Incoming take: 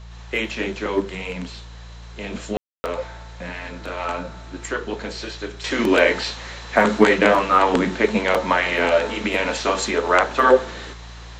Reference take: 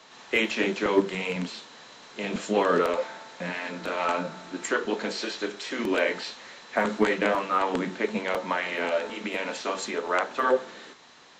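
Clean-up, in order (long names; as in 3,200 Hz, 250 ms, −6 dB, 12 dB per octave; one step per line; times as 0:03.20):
hum removal 57.4 Hz, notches 3
ambience match 0:02.57–0:02.84
level 0 dB, from 0:05.64 −9 dB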